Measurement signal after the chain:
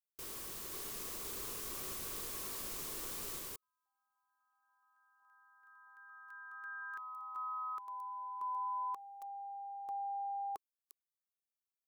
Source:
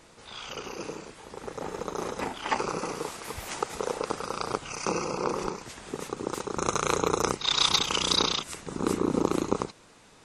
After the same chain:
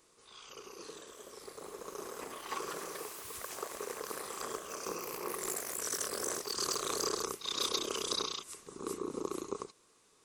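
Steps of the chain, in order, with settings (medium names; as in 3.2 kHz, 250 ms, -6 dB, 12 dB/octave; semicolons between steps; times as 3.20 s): ever faster or slower copies 565 ms, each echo +4 st, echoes 3; pre-emphasis filter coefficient 0.8; small resonant body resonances 400/1100 Hz, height 11 dB, ringing for 20 ms; trim -6 dB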